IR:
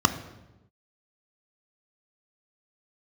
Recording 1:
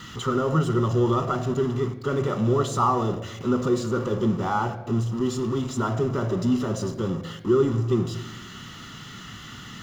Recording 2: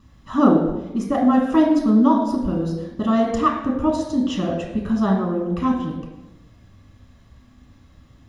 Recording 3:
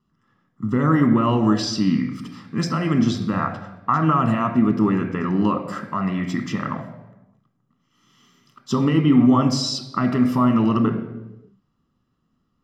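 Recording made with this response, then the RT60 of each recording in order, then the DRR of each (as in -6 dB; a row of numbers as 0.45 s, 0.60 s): 1; 1.0 s, 1.0 s, 1.0 s; 9.0 dB, -1.5 dB, 5.0 dB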